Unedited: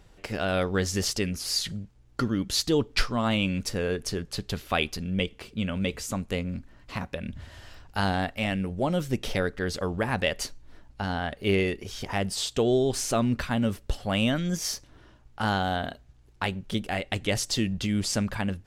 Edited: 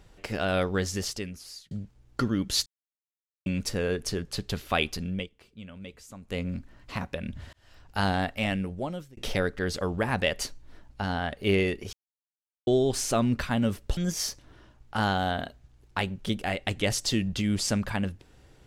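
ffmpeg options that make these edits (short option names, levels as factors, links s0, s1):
-filter_complex "[0:a]asplit=11[s0][s1][s2][s3][s4][s5][s6][s7][s8][s9][s10];[s0]atrim=end=1.71,asetpts=PTS-STARTPTS,afade=t=out:st=0.6:d=1.11[s11];[s1]atrim=start=1.71:end=2.66,asetpts=PTS-STARTPTS,afade=t=in:d=0.004:c=hsin,afade=t=out:st=0.946:d=0.004:c=hsin[s12];[s2]atrim=start=2.66:end=3.46,asetpts=PTS-STARTPTS,volume=0[s13];[s3]atrim=start=3.46:end=5.28,asetpts=PTS-STARTPTS,afade=t=in:d=0.004:c=hsin,afade=t=out:st=1.6:d=0.22:silence=0.188365[s14];[s4]atrim=start=5.28:end=6.21,asetpts=PTS-STARTPTS,volume=0.188[s15];[s5]atrim=start=6.21:end=7.53,asetpts=PTS-STARTPTS,afade=t=in:d=0.22:silence=0.188365,afade=t=out:st=1.316:d=0.004:c=hsin[s16];[s6]atrim=start=7.53:end=9.17,asetpts=PTS-STARTPTS,afade=t=in:d=0.48,afade=t=out:st=0.99:d=0.65[s17];[s7]atrim=start=9.17:end=11.93,asetpts=PTS-STARTPTS,afade=t=in:d=0.004:c=hsin,afade=t=out:st=2.756:d=0.004:c=hsin[s18];[s8]atrim=start=11.93:end=12.67,asetpts=PTS-STARTPTS,volume=0[s19];[s9]atrim=start=12.67:end=13.972,asetpts=PTS-STARTPTS,afade=t=in:d=0.004:c=hsin[s20];[s10]atrim=start=14.418[s21];[s11][s12][s13][s14][s15][s16][s17][s18][s19][s20]concat=n=10:v=0:a=1[s22];[s22][s21]acrossfade=d=0.004:c1=hsin:c2=hsin"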